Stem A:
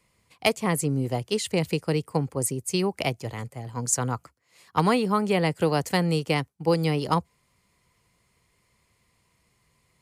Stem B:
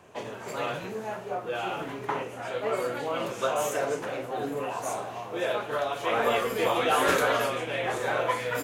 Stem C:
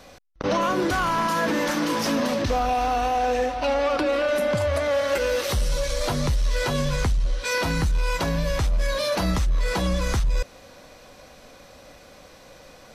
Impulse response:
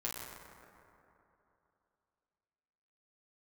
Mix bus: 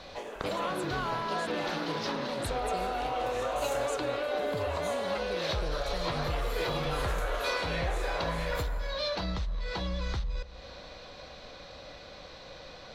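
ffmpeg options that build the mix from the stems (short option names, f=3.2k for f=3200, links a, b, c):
-filter_complex "[0:a]volume=-12dB[a];[1:a]highpass=290,alimiter=limit=-20.5dB:level=0:latency=1:release=110,volume=-7dB,asplit=2[b][c];[c]volume=-4dB[d];[2:a]aemphasis=mode=reproduction:type=50fm,acompressor=threshold=-32dB:ratio=6,equalizer=f=250:t=o:w=0.67:g=-5,equalizer=f=4k:t=o:w=0.67:g=11,equalizer=f=10k:t=o:w=0.67:g=-11,volume=-0.5dB,asplit=2[e][f];[f]volume=-17.5dB[g];[a][b]amix=inputs=2:normalize=0,alimiter=level_in=6dB:limit=-24dB:level=0:latency=1:release=430,volume=-6dB,volume=0dB[h];[3:a]atrim=start_sample=2205[i];[d][g]amix=inputs=2:normalize=0[j];[j][i]afir=irnorm=-1:irlink=0[k];[e][h][k]amix=inputs=3:normalize=0"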